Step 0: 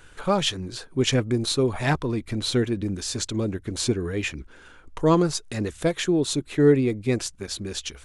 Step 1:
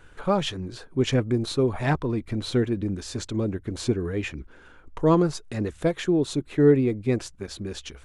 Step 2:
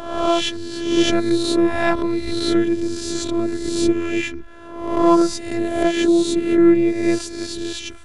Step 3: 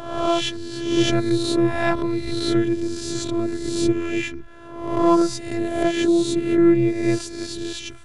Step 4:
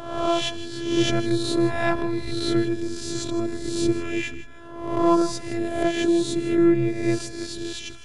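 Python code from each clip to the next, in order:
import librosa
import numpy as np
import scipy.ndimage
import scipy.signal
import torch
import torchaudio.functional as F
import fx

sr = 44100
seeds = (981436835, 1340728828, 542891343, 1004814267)

y1 = fx.high_shelf(x, sr, hz=2700.0, db=-10.0)
y2 = fx.spec_swells(y1, sr, rise_s=0.91)
y2 = fx.robotise(y2, sr, hz=338.0)
y2 = F.gain(torch.from_numpy(y2), 6.5).numpy()
y3 = fx.peak_eq(y2, sr, hz=130.0, db=13.5, octaves=0.24)
y3 = F.gain(torch.from_numpy(y3), -2.5).numpy()
y4 = fx.echo_feedback(y3, sr, ms=158, feedback_pct=25, wet_db=-14.5)
y4 = F.gain(torch.from_numpy(y4), -2.0).numpy()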